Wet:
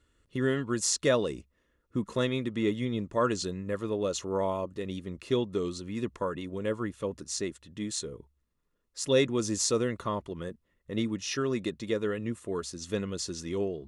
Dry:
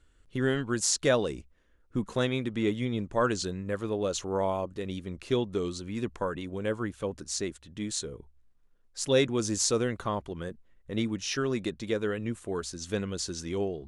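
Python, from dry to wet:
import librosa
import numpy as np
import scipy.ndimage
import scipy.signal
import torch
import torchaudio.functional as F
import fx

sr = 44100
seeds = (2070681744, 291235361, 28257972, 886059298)

y = fx.notch_comb(x, sr, f0_hz=780.0)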